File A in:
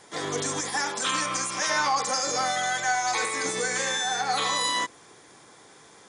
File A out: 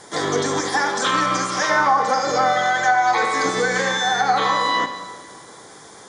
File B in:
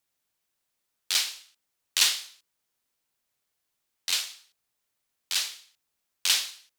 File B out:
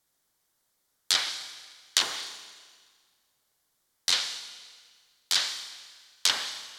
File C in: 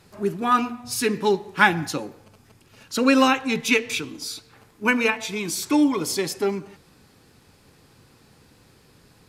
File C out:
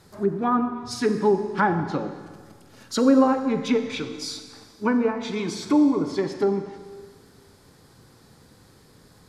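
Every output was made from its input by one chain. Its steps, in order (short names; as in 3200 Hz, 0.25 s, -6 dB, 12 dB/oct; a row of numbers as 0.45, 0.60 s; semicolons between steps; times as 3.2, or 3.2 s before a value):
bell 2600 Hz -9.5 dB 0.39 oct; treble ducked by the level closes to 860 Hz, closed at -18.5 dBFS; Schroeder reverb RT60 1.7 s, combs from 29 ms, DRR 8.5 dB; normalise peaks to -6 dBFS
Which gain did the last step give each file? +9.0, +6.5, +1.0 dB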